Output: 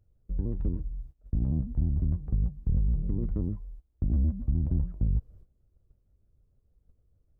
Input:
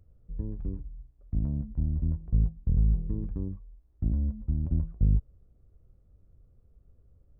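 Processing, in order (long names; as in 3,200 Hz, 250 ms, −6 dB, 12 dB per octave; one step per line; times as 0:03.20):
noise gate −51 dBFS, range −15 dB
in parallel at +2 dB: downward compressor, threshold −35 dBFS, peak gain reduction 15.5 dB
on the sum: brickwall limiter −18.5 dBFS, peak gain reduction 7 dB
pitch modulation by a square or saw wave square 6.6 Hz, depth 160 cents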